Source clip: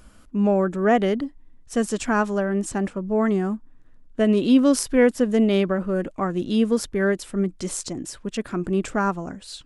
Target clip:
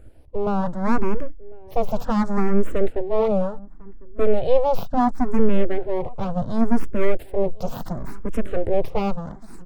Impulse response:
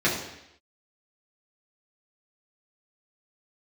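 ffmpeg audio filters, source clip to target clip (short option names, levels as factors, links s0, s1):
-filter_complex "[0:a]equalizer=f=3200:t=o:w=0.32:g=-4.5,aeval=exprs='abs(val(0))':c=same,tiltshelf=f=1100:g=8.5,dynaudnorm=f=200:g=11:m=3.76,asplit=2[s0][s1];[s1]adelay=1050,volume=0.0794,highshelf=f=4000:g=-23.6[s2];[s0][s2]amix=inputs=2:normalize=0,asplit=2[s3][s4];[s4]afreqshift=0.7[s5];[s3][s5]amix=inputs=2:normalize=1"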